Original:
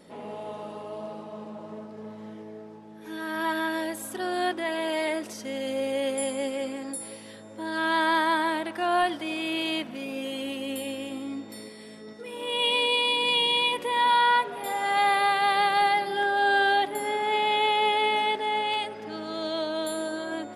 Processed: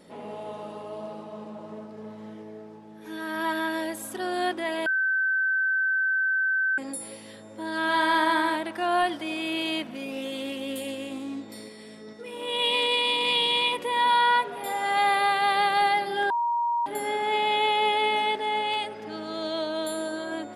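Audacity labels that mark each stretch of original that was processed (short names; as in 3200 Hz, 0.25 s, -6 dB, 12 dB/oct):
4.860000	6.780000	bleep 1540 Hz -21.5 dBFS
7.820000	8.560000	flutter echo walls apart 11.4 m, dies away in 0.59 s
10.110000	13.830000	Doppler distortion depth 0.11 ms
16.300000	16.860000	bleep 946 Hz -22.5 dBFS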